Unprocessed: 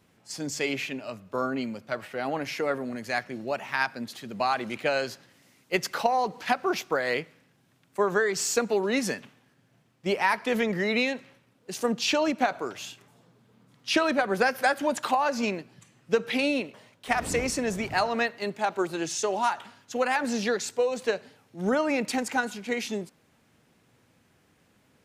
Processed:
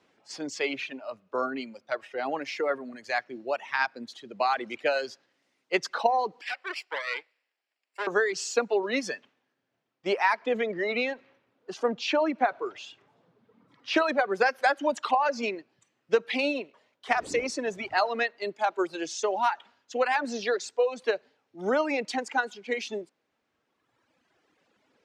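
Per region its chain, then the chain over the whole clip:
6.41–8.07 minimum comb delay 0.41 ms + HPF 820 Hz + notch 6400 Hz, Q 5.2
10.41–13.96 G.711 law mismatch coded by mu + LPF 2600 Hz 6 dB/oct
whole clip: bell 290 Hz +9 dB 1.5 oct; reverb removal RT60 1.8 s; three-band isolator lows -16 dB, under 440 Hz, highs -24 dB, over 6800 Hz

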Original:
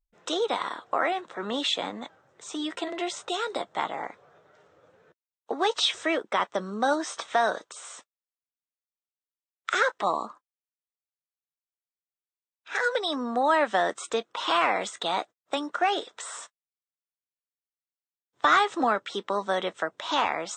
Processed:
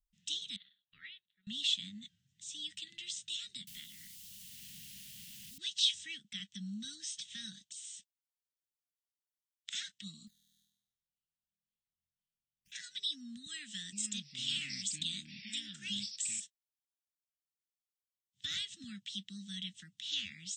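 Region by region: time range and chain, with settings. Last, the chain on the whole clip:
0.56–1.47 steep low-pass 4200 Hz 48 dB/oct + resonant low shelf 390 Hz -9.5 dB, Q 3 + upward expander 2.5:1, over -35 dBFS
3.67–5.58 bell 140 Hz -9 dB 1.5 oct + requantised 8-bit, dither triangular + three-band squash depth 70%
10.27–12.72 decimation with a swept rate 14× 1.9 Hz + flutter echo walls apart 4.2 m, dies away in 0.78 s + compressor 10:1, threshold -59 dBFS
13.46–16.4 bell 7600 Hz +8.5 dB 0.38 oct + echoes that change speed 0.459 s, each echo -7 st, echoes 2, each echo -6 dB + HPF 190 Hz
whole clip: Chebyshev band-stop 200–2900 Hz, order 4; band shelf 1400 Hz +13 dB 1.2 oct; gain -3.5 dB

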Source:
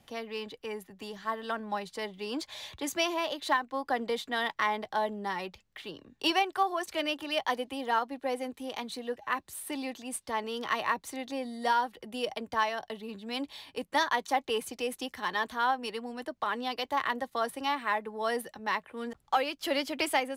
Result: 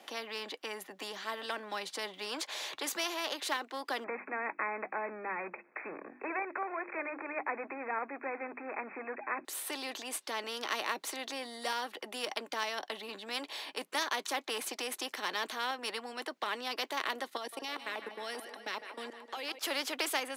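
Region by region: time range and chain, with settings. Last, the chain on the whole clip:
4.04–9.45 G.711 law mismatch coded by mu + brick-wall FIR low-pass 2600 Hz + notches 50/100/150/200/250/300/350 Hz
17.37–19.59 LFO notch saw down 5.1 Hz 770–2100 Hz + level quantiser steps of 19 dB + thinning echo 0.154 s, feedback 65%, high-pass 230 Hz, level -17 dB
whole clip: HPF 320 Hz 24 dB/oct; high shelf 5600 Hz -7.5 dB; spectral compressor 2:1

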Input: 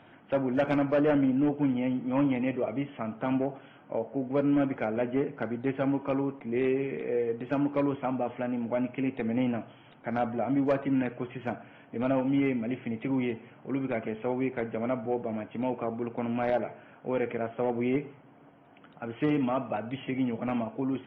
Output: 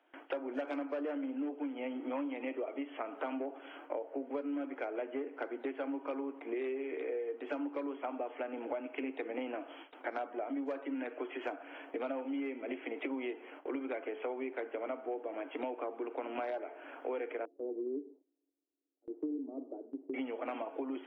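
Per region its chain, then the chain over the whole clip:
17.45–20.14 ladder low-pass 430 Hz, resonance 45% + three-band expander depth 40%
whole clip: steep high-pass 270 Hz 96 dB/oct; gate with hold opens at -45 dBFS; compressor 8:1, threshold -41 dBFS; gain +5.5 dB

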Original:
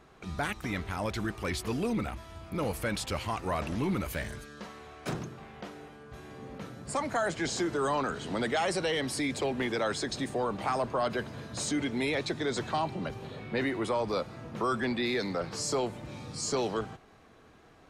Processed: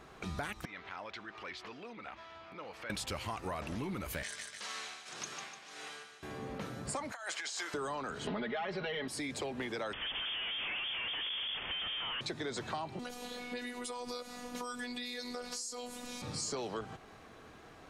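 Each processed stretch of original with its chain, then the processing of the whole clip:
0.65–2.9 compressor, threshold -37 dBFS + HPF 1100 Hz 6 dB/oct + air absorption 210 m
4.23–6.23 weighting filter ITU-R 468 + tremolo 1.8 Hz, depth 94% + feedback echo 0.149 s, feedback 49%, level -8.5 dB
7.12–7.74 HPF 1100 Hz + negative-ratio compressor -39 dBFS, ratio -0.5
8.27–9.08 LPF 3600 Hz 24 dB/oct + comb 4.8 ms, depth 99% + fast leveller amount 50%
9.93–12.21 low shelf 250 Hz -9 dB + Schmitt trigger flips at -42.5 dBFS + inverted band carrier 3400 Hz
12.99–16.22 tone controls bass -3 dB, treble +14 dB + compressor 3:1, threshold -34 dBFS + robotiser 245 Hz
whole clip: low shelf 470 Hz -3.5 dB; compressor 6:1, threshold -41 dBFS; gain +4.5 dB

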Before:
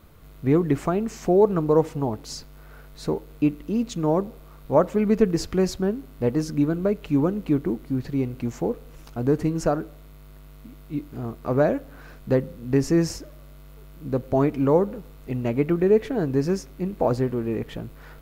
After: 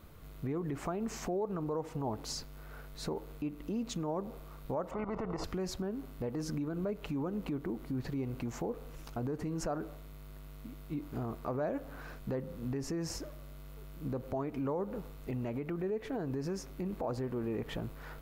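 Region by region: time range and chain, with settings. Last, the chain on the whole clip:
4.91–5.44 level quantiser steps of 11 dB + polynomial smoothing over 65 samples + spectral compressor 2:1
whole clip: compressor 10:1, threshold -25 dBFS; limiter -26 dBFS; dynamic EQ 920 Hz, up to +5 dB, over -51 dBFS, Q 1; gain -3 dB

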